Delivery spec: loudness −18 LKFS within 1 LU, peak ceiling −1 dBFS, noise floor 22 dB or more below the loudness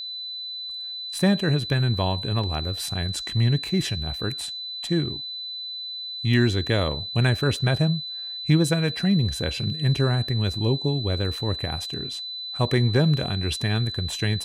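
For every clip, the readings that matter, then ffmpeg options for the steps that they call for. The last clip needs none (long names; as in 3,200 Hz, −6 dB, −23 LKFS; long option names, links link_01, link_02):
interfering tone 4,000 Hz; level of the tone −31 dBFS; integrated loudness −24.5 LKFS; sample peak −8.0 dBFS; target loudness −18.0 LKFS
→ -af "bandreject=frequency=4000:width=30"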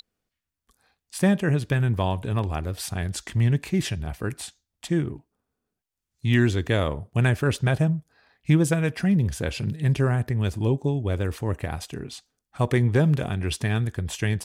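interfering tone none found; integrated loudness −24.5 LKFS; sample peak −8.5 dBFS; target loudness −18.0 LKFS
→ -af "volume=6.5dB"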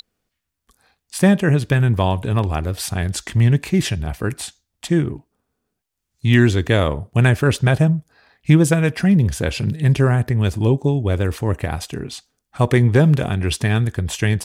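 integrated loudness −18.0 LKFS; sample peak −2.0 dBFS; background noise floor −79 dBFS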